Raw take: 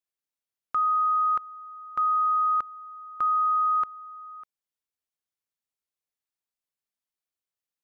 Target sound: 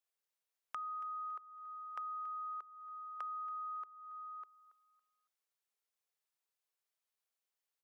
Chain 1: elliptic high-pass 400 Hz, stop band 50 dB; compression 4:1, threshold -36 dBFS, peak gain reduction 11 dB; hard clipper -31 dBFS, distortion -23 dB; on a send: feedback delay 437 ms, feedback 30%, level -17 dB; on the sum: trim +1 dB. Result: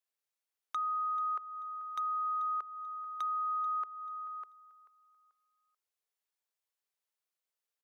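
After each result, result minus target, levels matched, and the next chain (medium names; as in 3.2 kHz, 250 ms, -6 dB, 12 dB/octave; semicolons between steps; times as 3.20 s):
echo 158 ms late; compression: peak gain reduction -8.5 dB
elliptic high-pass 400 Hz, stop band 50 dB; compression 4:1, threshold -36 dBFS, peak gain reduction 11 dB; hard clipper -31 dBFS, distortion -23 dB; on a send: feedback delay 279 ms, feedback 30%, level -17 dB; on the sum: trim +1 dB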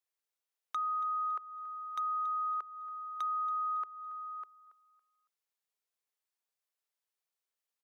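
compression: peak gain reduction -8.5 dB
elliptic high-pass 400 Hz, stop band 50 dB; compression 4:1, threshold -47.5 dBFS, peak gain reduction 20 dB; hard clipper -31 dBFS, distortion -39 dB; on a send: feedback delay 279 ms, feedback 30%, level -17 dB; on the sum: trim +1 dB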